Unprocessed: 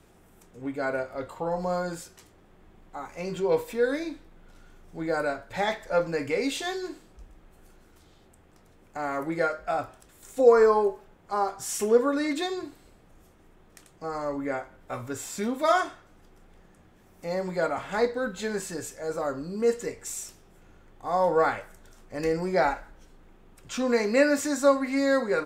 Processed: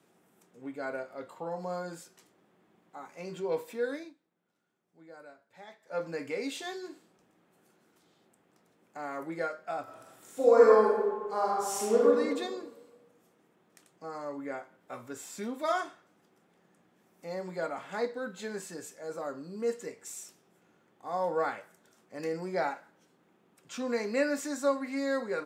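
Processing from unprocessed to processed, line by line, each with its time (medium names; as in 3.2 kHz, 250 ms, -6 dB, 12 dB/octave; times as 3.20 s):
3.84–6.12 s: dip -15.5 dB, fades 0.30 s equal-power
9.83–12.07 s: reverb throw, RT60 1.4 s, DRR -5 dB
whole clip: high-pass 150 Hz 24 dB/octave; trim -7.5 dB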